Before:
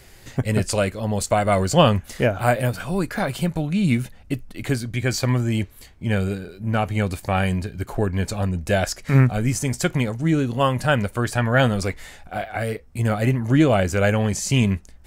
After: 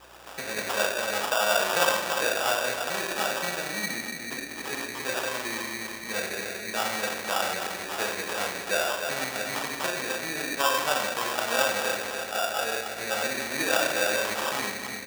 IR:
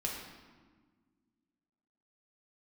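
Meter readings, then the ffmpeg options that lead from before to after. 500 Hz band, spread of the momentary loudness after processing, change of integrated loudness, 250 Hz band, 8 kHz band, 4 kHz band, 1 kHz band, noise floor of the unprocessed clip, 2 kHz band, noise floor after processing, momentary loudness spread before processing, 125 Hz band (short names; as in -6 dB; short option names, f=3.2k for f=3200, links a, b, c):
-6.0 dB, 8 LU, -5.5 dB, -16.5 dB, +0.5 dB, +2.0 dB, -2.5 dB, -47 dBFS, +0.5 dB, -38 dBFS, 10 LU, -28.0 dB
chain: -filter_complex "[0:a]asplit=2[a][b];[b]adelay=35,volume=-11dB[c];[a][c]amix=inputs=2:normalize=0,asplit=2[d][e];[e]adelay=293,lowpass=f=3.6k:p=1,volume=-12dB,asplit=2[f][g];[g]adelay=293,lowpass=f=3.6k:p=1,volume=0.36,asplit=2[h][i];[i]adelay=293,lowpass=f=3.6k:p=1,volume=0.36,asplit=2[j][k];[k]adelay=293,lowpass=f=3.6k:p=1,volume=0.36[l];[d][f][h][j][l]amix=inputs=5:normalize=0,acompressor=threshold=-28dB:ratio=2.5[m];[1:a]atrim=start_sample=2205,asetrate=52920,aresample=44100[n];[m][n]afir=irnorm=-1:irlink=0,acrusher=samples=21:mix=1:aa=0.000001,highpass=720,aeval=exprs='val(0)+0.000447*(sin(2*PI*60*n/s)+sin(2*PI*2*60*n/s)/2+sin(2*PI*3*60*n/s)/3+sin(2*PI*4*60*n/s)/4+sin(2*PI*5*60*n/s)/5)':c=same,volume=6dB"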